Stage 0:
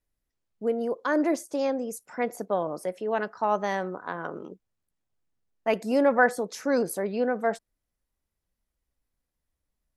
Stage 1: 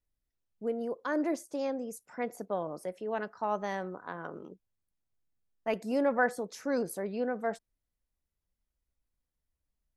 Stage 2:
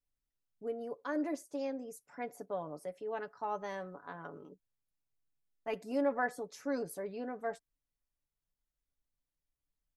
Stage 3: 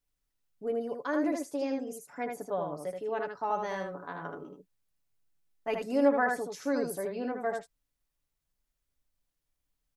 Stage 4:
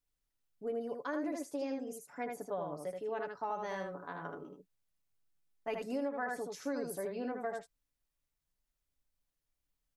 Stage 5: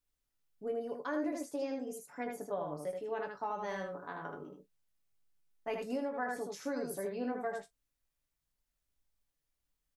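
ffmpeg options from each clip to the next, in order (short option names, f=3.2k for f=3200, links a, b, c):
-af "lowshelf=f=150:g=5.5,volume=-7dB"
-af "aecho=1:1:7:0.53,volume=-6.5dB"
-af "aecho=1:1:78:0.596,volume=5dB"
-af "acompressor=threshold=-29dB:ratio=10,volume=-3.5dB"
-af "aecho=1:1:20|45:0.376|0.133"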